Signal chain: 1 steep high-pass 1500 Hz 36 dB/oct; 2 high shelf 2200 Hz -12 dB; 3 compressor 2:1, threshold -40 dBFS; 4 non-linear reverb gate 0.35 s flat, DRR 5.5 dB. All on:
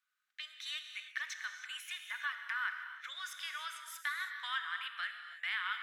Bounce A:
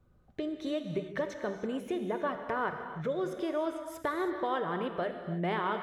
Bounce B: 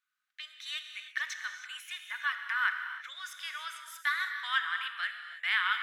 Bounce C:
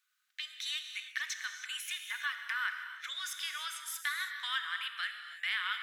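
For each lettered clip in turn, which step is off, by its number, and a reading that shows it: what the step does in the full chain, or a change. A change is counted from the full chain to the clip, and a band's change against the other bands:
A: 1, 1 kHz band +15.5 dB; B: 3, mean gain reduction 3.5 dB; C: 2, 8 kHz band +6.0 dB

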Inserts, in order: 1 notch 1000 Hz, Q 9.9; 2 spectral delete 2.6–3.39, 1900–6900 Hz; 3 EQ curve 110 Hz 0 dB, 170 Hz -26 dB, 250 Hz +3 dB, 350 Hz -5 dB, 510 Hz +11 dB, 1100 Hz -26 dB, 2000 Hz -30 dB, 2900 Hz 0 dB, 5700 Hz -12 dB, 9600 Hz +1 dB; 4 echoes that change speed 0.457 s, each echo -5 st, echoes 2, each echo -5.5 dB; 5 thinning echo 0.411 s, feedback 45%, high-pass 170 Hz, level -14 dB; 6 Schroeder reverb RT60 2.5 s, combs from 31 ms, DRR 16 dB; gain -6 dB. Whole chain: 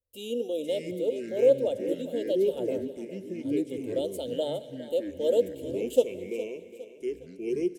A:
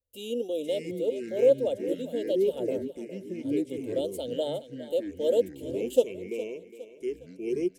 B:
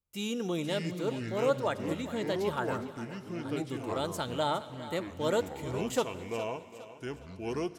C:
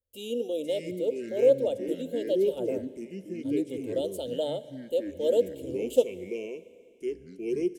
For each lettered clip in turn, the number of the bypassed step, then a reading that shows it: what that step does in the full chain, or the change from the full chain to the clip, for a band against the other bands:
6, echo-to-direct -11.5 dB to -13.0 dB; 3, momentary loudness spread change -2 LU; 5, echo-to-direct -11.5 dB to -16.0 dB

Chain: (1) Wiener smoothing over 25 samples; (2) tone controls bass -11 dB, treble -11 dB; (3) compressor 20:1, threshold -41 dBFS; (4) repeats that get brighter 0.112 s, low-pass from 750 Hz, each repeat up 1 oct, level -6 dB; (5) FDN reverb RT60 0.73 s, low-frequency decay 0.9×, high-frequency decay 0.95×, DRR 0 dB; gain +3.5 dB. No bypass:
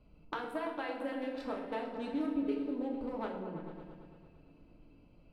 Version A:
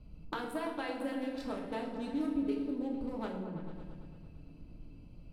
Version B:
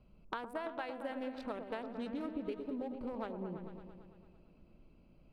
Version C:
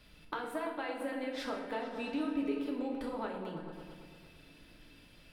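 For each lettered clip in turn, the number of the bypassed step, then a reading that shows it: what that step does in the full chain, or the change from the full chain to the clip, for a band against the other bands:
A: 2, 125 Hz band +5.5 dB; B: 5, momentary loudness spread change -4 LU; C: 1, 4 kHz band +4.5 dB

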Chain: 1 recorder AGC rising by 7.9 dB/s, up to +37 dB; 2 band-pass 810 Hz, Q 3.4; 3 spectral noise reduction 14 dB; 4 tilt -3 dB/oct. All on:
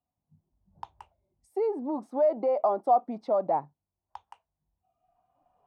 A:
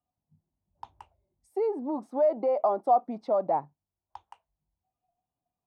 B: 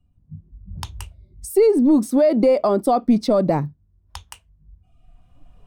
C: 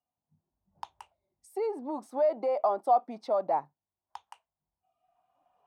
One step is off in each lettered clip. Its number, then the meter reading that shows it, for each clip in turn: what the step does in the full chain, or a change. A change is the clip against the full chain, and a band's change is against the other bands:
1, momentary loudness spread change -3 LU; 2, crest factor change -4.5 dB; 4, momentary loudness spread change +10 LU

